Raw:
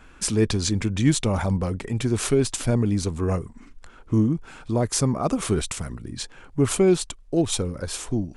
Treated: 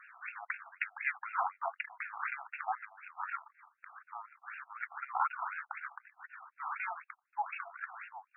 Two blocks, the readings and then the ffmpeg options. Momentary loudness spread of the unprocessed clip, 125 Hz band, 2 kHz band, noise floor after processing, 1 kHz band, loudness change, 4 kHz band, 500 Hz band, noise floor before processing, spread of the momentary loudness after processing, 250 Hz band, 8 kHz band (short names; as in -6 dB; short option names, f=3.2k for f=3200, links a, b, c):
10 LU, under -40 dB, -1.0 dB, -80 dBFS, -1.5 dB, -15.5 dB, under -30 dB, -29.0 dB, -48 dBFS, 14 LU, under -40 dB, under -40 dB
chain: -af "aeval=exprs='val(0)*sin(2*PI*160*n/s)':c=same,afftfilt=real='re*between(b*sr/1024,940*pow(2000/940,0.5+0.5*sin(2*PI*4*pts/sr))/1.41,940*pow(2000/940,0.5+0.5*sin(2*PI*4*pts/sr))*1.41)':imag='im*between(b*sr/1024,940*pow(2000/940,0.5+0.5*sin(2*PI*4*pts/sr))/1.41,940*pow(2000/940,0.5+0.5*sin(2*PI*4*pts/sr))*1.41)':win_size=1024:overlap=0.75,volume=5dB"